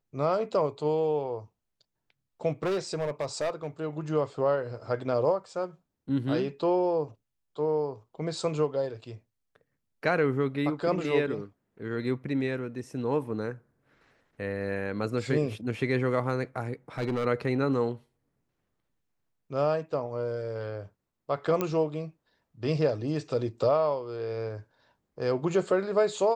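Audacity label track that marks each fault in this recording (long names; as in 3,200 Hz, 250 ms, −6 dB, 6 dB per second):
2.630000	3.670000	clipping −25 dBFS
16.980000	17.260000	clipping −24.5 dBFS
21.610000	21.610000	click −14 dBFS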